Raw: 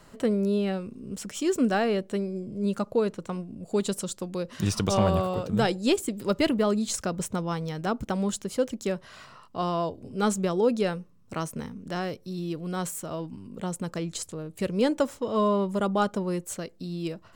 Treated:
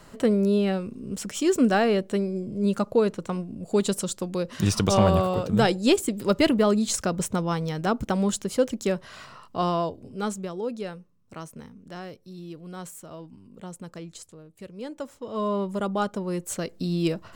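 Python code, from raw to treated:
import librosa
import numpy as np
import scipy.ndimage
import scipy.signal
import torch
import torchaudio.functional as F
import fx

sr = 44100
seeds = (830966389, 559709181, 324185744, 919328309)

y = fx.gain(x, sr, db=fx.line((9.68, 3.5), (10.51, -7.5), (14.02, -7.5), (14.76, -14.0), (15.58, -1.5), (16.23, -1.5), (16.78, 7.5)))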